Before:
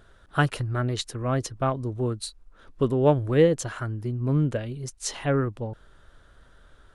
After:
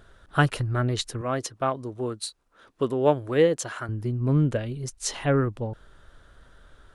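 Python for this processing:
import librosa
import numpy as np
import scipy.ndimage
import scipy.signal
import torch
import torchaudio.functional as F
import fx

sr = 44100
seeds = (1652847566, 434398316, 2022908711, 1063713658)

y = fx.highpass(x, sr, hz=360.0, slope=6, at=(1.21, 3.89))
y = y * 10.0 ** (1.5 / 20.0)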